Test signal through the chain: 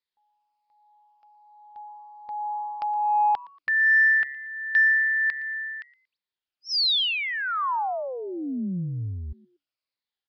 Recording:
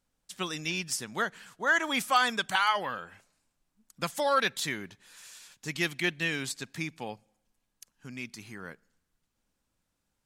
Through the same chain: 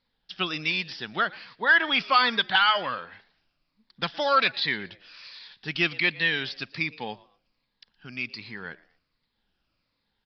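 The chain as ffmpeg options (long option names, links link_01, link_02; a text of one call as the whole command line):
ffmpeg -i in.wav -filter_complex "[0:a]afftfilt=real='re*pow(10,7/40*sin(2*PI*(0.98*log(max(b,1)*sr/1024/100)/log(2)-(-1.3)*(pts-256)/sr)))':imag='im*pow(10,7/40*sin(2*PI*(0.98*log(max(b,1)*sr/1024/100)/log(2)-(-1.3)*(pts-256)/sr)))':win_size=1024:overlap=0.75,acrossover=split=4300[link_01][link_02];[link_02]acompressor=threshold=-39dB:ratio=4:attack=1:release=60[link_03];[link_01][link_03]amix=inputs=2:normalize=0,highshelf=frequency=2000:gain=9.5,acontrast=82,asplit=2[link_04][link_05];[link_05]asplit=2[link_06][link_07];[link_06]adelay=116,afreqshift=140,volume=-22dB[link_08];[link_07]adelay=232,afreqshift=280,volume=-32.5dB[link_09];[link_08][link_09]amix=inputs=2:normalize=0[link_10];[link_04][link_10]amix=inputs=2:normalize=0,aresample=11025,aresample=44100,volume=-6dB" out.wav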